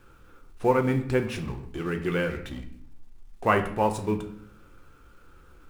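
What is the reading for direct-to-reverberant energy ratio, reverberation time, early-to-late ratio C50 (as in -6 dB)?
5.0 dB, 0.70 s, 11.0 dB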